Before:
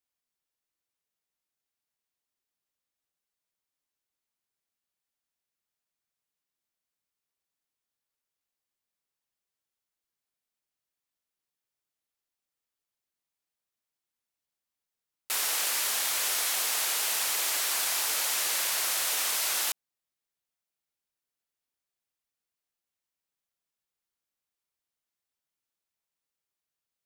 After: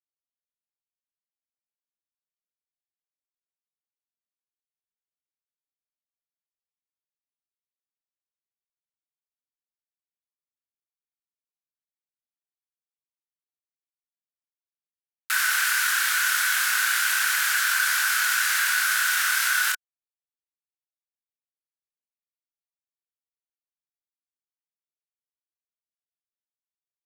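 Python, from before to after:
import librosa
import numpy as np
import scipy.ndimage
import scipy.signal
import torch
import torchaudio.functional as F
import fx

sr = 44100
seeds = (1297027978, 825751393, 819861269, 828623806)

y = fx.law_mismatch(x, sr, coded='A')
y = fx.highpass_res(y, sr, hz=1500.0, q=11.0)
y = fx.doubler(y, sr, ms=27.0, db=-5)
y = fx.env_flatten(y, sr, amount_pct=50)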